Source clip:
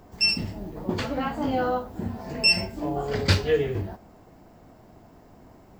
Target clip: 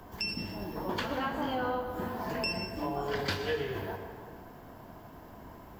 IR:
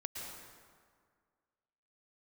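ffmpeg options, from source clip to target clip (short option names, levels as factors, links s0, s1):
-filter_complex "[0:a]acrossover=split=240|480[s0][s1][s2];[s0]acompressor=threshold=0.00631:ratio=4[s3];[s1]acompressor=threshold=0.00891:ratio=4[s4];[s2]acompressor=threshold=0.0141:ratio=4[s5];[s3][s4][s5]amix=inputs=3:normalize=0,equalizer=f=1000:t=o:w=0.33:g=8,equalizer=f=1600:t=o:w=0.33:g=7,equalizer=f=3150:t=o:w=0.33:g=6,equalizer=f=8000:t=o:w=0.33:g=-3,equalizer=f=12500:t=o:w=0.33:g=11,asplit=2[s6][s7];[1:a]atrim=start_sample=2205[s8];[s7][s8]afir=irnorm=-1:irlink=0,volume=1.06[s9];[s6][s9]amix=inputs=2:normalize=0,volume=0.596"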